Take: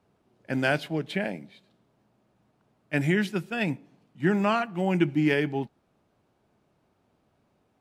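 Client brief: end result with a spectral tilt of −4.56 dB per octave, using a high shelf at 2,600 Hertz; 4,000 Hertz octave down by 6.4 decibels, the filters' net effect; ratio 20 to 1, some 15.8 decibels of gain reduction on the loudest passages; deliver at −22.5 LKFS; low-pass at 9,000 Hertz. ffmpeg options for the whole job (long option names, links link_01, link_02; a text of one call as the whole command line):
ffmpeg -i in.wav -af "lowpass=9000,highshelf=frequency=2600:gain=-4.5,equalizer=frequency=4000:width_type=o:gain=-5.5,acompressor=threshold=-34dB:ratio=20,volume=18dB" out.wav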